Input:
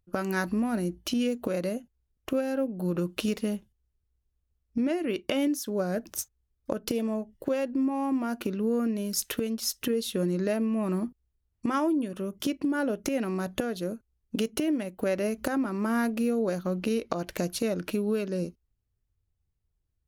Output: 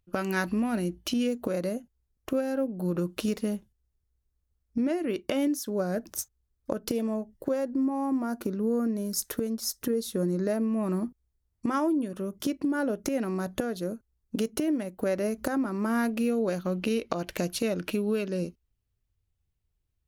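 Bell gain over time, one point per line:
bell 2800 Hz 0.8 oct
0.82 s +5 dB
1.43 s -4.5 dB
7.14 s -4.5 dB
7.64 s -13.5 dB
10.36 s -13.5 dB
10.8 s -5.5 dB
15.7 s -5.5 dB
16.26 s +3.5 dB

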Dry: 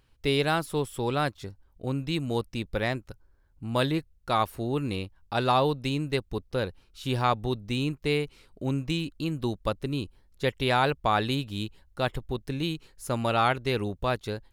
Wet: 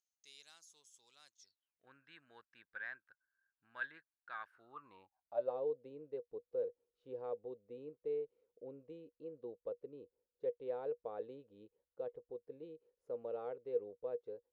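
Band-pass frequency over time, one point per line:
band-pass, Q 17
1.39 s 6400 Hz
1.86 s 1600 Hz
4.48 s 1600 Hz
5.58 s 480 Hz

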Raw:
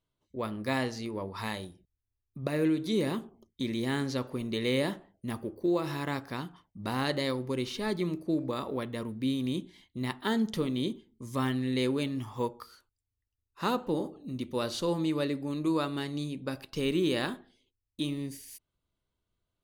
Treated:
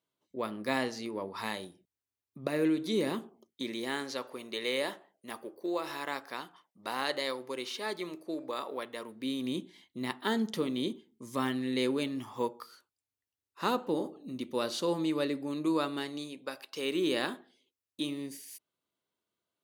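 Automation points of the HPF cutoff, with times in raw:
3.2 s 220 Hz
4.15 s 490 Hz
9.02 s 490 Hz
9.53 s 220 Hz
15.86 s 220 Hz
16.64 s 620 Hz
17.09 s 260 Hz

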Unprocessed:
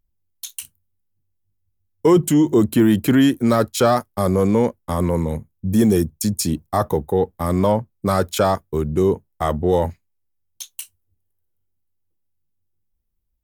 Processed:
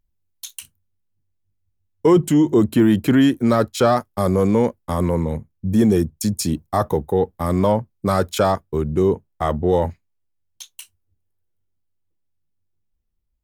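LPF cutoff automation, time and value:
LPF 6 dB/oct
10000 Hz
from 0.59 s 5100 Hz
from 4.06 s 9700 Hz
from 5.14 s 4100 Hz
from 6.17 s 8800 Hz
from 8.52 s 4600 Hz

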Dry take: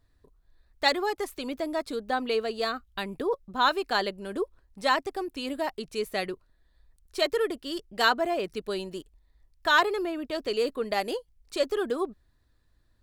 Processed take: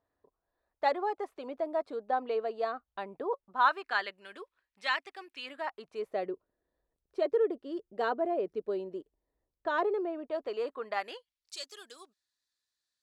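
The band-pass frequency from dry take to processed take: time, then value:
band-pass, Q 1.4
3.17 s 700 Hz
4.3 s 2300 Hz
5.35 s 2300 Hz
6.27 s 460 Hz
9.83 s 460 Hz
10.95 s 1200 Hz
11.56 s 6100 Hz

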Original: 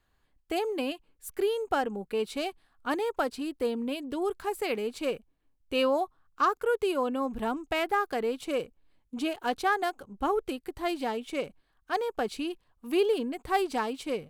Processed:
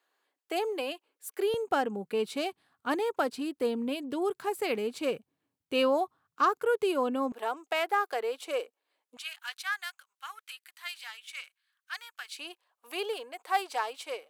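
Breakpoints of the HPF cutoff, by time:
HPF 24 dB/oct
360 Hz
from 1.54 s 110 Hz
from 7.32 s 440 Hz
from 9.17 s 1500 Hz
from 12.39 s 550 Hz

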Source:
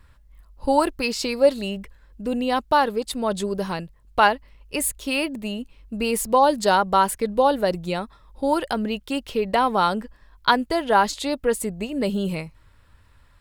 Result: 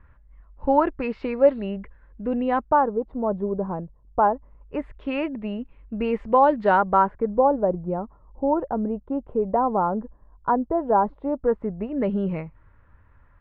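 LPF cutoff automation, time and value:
LPF 24 dB/oct
2.52 s 2000 Hz
2.94 s 1000 Hz
4.32 s 1000 Hz
4.99 s 2100 Hz
6.71 s 2100 Hz
7.5 s 1000 Hz
11.2 s 1000 Hz
12.03 s 1900 Hz

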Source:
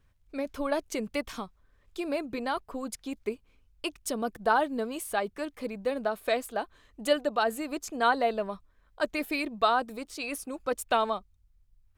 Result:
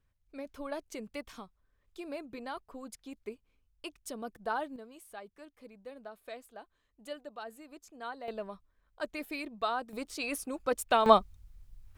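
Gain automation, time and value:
-9.5 dB
from 4.76 s -17 dB
from 8.28 s -8 dB
from 9.93 s -0.5 dB
from 11.06 s +11 dB

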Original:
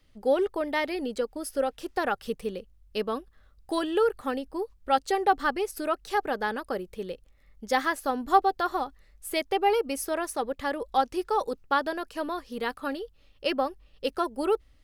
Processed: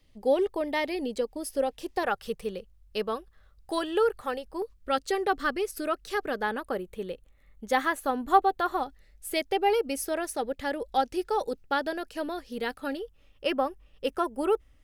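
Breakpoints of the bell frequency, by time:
bell -11 dB 0.33 oct
1400 Hz
from 2.03 s 270 Hz
from 4.62 s 860 Hz
from 6.42 s 5100 Hz
from 8.83 s 1100 Hz
from 12.97 s 4300 Hz

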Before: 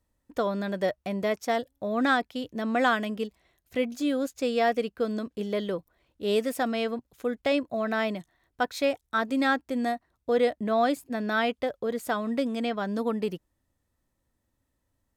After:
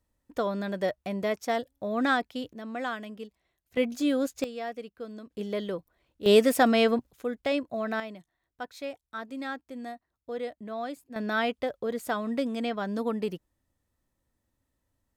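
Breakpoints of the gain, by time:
-1.5 dB
from 2.53 s -9.5 dB
from 3.77 s +1 dB
from 4.44 s -11.5 dB
from 5.3 s -2.5 dB
from 6.26 s +6.5 dB
from 7.11 s -2.5 dB
from 8 s -11 dB
from 11.16 s -1.5 dB

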